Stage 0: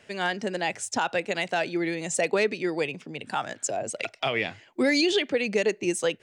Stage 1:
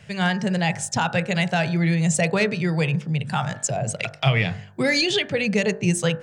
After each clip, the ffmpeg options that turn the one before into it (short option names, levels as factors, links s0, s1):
-af "lowshelf=f=210:t=q:w=3:g=11.5,bandreject=f=49.45:t=h:w=4,bandreject=f=98.9:t=h:w=4,bandreject=f=148.35:t=h:w=4,bandreject=f=197.8:t=h:w=4,bandreject=f=247.25:t=h:w=4,bandreject=f=296.7:t=h:w=4,bandreject=f=346.15:t=h:w=4,bandreject=f=395.6:t=h:w=4,bandreject=f=445.05:t=h:w=4,bandreject=f=494.5:t=h:w=4,bandreject=f=543.95:t=h:w=4,bandreject=f=593.4:t=h:w=4,bandreject=f=642.85:t=h:w=4,bandreject=f=692.3:t=h:w=4,bandreject=f=741.75:t=h:w=4,bandreject=f=791.2:t=h:w=4,bandreject=f=840.65:t=h:w=4,bandreject=f=890.1:t=h:w=4,bandreject=f=939.55:t=h:w=4,bandreject=f=989:t=h:w=4,bandreject=f=1038.45:t=h:w=4,bandreject=f=1087.9:t=h:w=4,bandreject=f=1137.35:t=h:w=4,bandreject=f=1186.8:t=h:w=4,bandreject=f=1236.25:t=h:w=4,bandreject=f=1285.7:t=h:w=4,bandreject=f=1335.15:t=h:w=4,bandreject=f=1384.6:t=h:w=4,bandreject=f=1434.05:t=h:w=4,bandreject=f=1483.5:t=h:w=4,bandreject=f=1532.95:t=h:w=4,bandreject=f=1582.4:t=h:w=4,bandreject=f=1631.85:t=h:w=4,bandreject=f=1681.3:t=h:w=4,bandreject=f=1730.75:t=h:w=4,bandreject=f=1780.2:t=h:w=4,bandreject=f=1829.65:t=h:w=4,volume=1.68"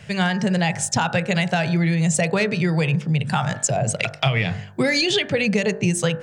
-af "acompressor=threshold=0.0891:ratio=6,volume=1.78"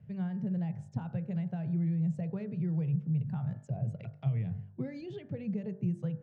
-af "bandpass=f=120:t=q:w=1.2:csg=0,volume=0.398"